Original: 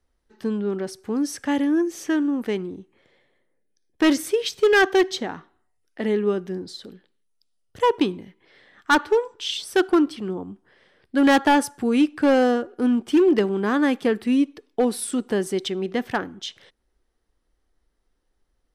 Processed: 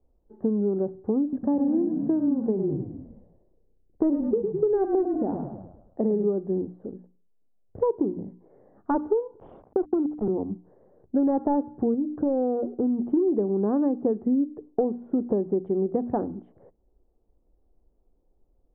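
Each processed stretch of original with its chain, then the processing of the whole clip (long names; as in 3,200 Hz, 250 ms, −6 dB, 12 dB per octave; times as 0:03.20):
0:01.22–0:06.24: high-frequency loss of the air 330 metres + echo with shifted repeats 104 ms, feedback 52%, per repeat −31 Hz, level −7.5 dB
0:09.40–0:10.28: Butterworth high-pass 170 Hz 72 dB per octave + downward compressor 3 to 1, threshold −20 dBFS + centre clipping without the shift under −31 dBFS
0:11.94–0:13.05: low-pass filter 1,100 Hz 6 dB per octave + downward compressor 2.5 to 1, threshold −25 dBFS
whole clip: inverse Chebyshev low-pass filter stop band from 4,300 Hz, stop band 80 dB; mains-hum notches 60/120/180/240/300 Hz; downward compressor, threshold −27 dBFS; level +6 dB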